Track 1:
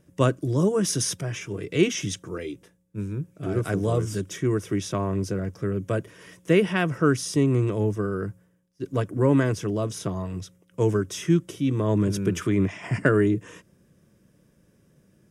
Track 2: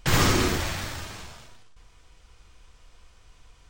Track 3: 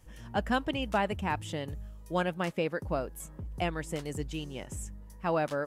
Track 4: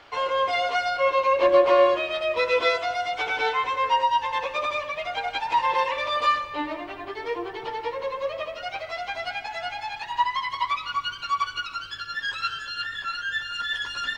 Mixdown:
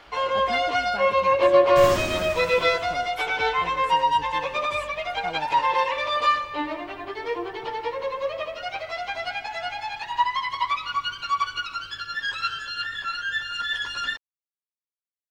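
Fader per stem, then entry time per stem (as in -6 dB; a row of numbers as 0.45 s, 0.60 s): mute, -8.0 dB, -7.5 dB, +1.0 dB; mute, 1.70 s, 0.00 s, 0.00 s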